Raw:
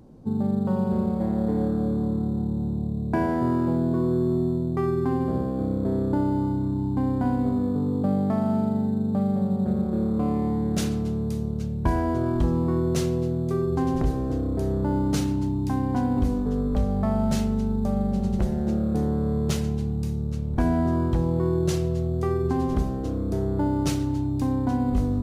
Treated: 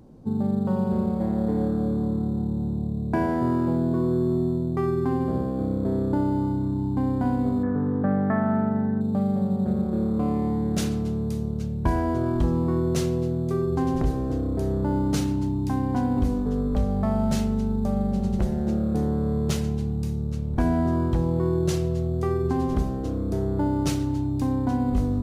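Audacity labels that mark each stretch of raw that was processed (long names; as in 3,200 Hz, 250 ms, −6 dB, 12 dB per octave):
7.630000	9.010000	low-pass with resonance 1,700 Hz, resonance Q 6.3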